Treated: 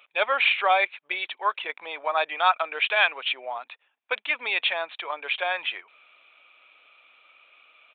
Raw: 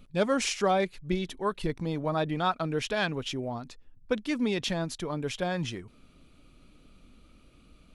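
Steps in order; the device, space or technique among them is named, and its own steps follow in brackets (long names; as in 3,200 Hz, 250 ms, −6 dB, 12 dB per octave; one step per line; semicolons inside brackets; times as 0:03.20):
musical greeting card (downsampling to 8,000 Hz; high-pass filter 700 Hz 24 dB per octave; parametric band 2,400 Hz +8.5 dB 0.32 octaves)
level +8 dB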